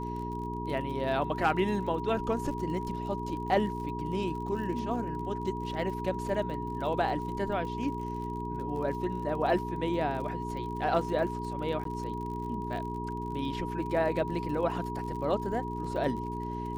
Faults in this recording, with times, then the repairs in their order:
crackle 51 per s -39 dBFS
hum 60 Hz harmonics 7 -37 dBFS
whine 960 Hz -37 dBFS
11.84–11.85 s: dropout 13 ms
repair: de-click; band-stop 960 Hz, Q 30; de-hum 60 Hz, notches 7; interpolate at 11.84 s, 13 ms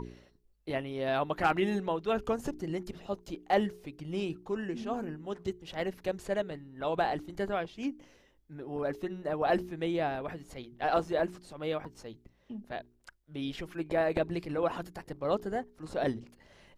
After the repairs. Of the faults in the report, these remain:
nothing left

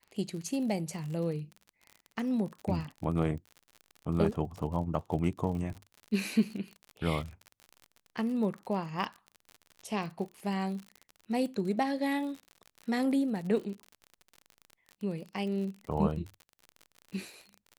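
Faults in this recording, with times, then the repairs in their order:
crackle 45 per s -38 dBFS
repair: de-click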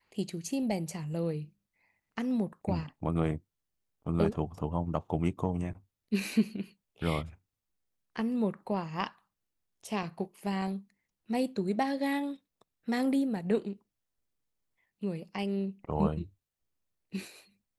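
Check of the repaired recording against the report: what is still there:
nothing left

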